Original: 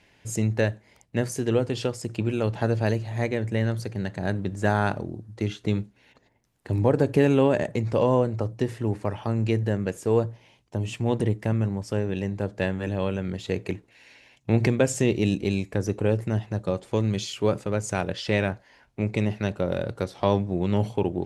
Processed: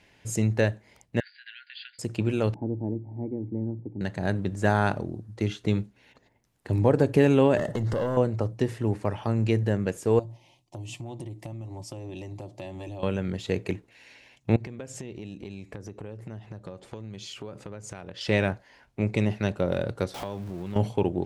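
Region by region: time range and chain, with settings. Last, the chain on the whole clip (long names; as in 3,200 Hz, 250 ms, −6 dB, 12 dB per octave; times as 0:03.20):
0:01.20–0:01.99: linear-phase brick-wall band-pass 1,400–4,900 Hz + high-shelf EQ 2,200 Hz −7 dB
0:02.54–0:04.01: low-shelf EQ 430 Hz +6.5 dB + log-companded quantiser 8 bits + formant resonators in series u
0:07.57–0:08.17: downward compressor 4 to 1, threshold −29 dBFS + leveller curve on the samples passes 2 + Butterworth band-reject 2,400 Hz, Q 4.3
0:10.19–0:13.03: phaser with its sweep stopped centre 300 Hz, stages 8 + comb filter 5.6 ms, depth 30% + downward compressor, threshold −34 dBFS
0:14.56–0:18.21: high-shelf EQ 8,000 Hz −7.5 dB + downward compressor, threshold −36 dBFS
0:20.14–0:20.76: converter with a step at zero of −34 dBFS + downward compressor 3 to 1, threshold −34 dBFS
whole clip: no processing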